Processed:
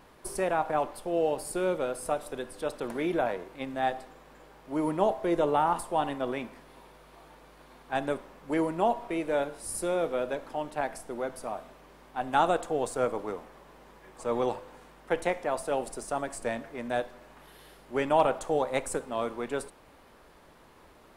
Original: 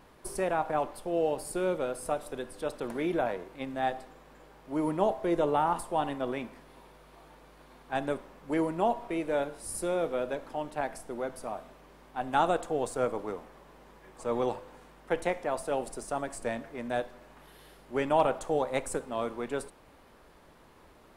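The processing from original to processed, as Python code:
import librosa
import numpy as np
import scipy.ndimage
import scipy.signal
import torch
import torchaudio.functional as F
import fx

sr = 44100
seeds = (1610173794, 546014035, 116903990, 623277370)

y = fx.low_shelf(x, sr, hz=330.0, db=-2.5)
y = y * librosa.db_to_amplitude(2.0)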